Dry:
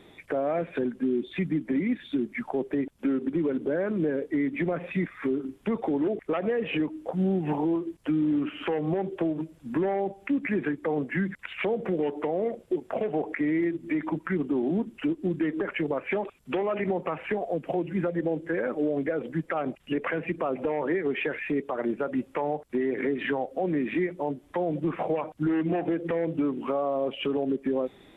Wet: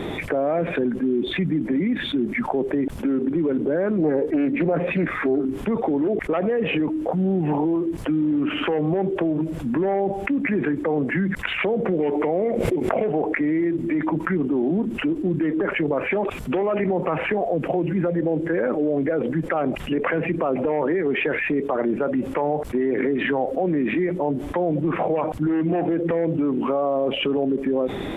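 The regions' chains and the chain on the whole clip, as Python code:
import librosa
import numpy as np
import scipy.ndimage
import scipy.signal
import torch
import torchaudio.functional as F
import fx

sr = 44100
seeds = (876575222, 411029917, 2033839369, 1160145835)

y = fx.chain(x, sr, fx.peak_eq(hz=400.0, db=5.0, octaves=1.9),
    fx.doubler(ms=13.0, db=-12.0),
    fx.doppler_dist(depth_ms=0.29), at=(3.98, 5.45))
y = fx.chain(y, sr, fx.peak_eq(hz=2200.0, db=8.0, octaves=0.29),
    fx.pre_swell(db_per_s=63.0), at=(12.0, 13.04))
y = fx.high_shelf(y, sr, hz=2100.0, db=-9.0)
y = fx.env_flatten(y, sr, amount_pct=70)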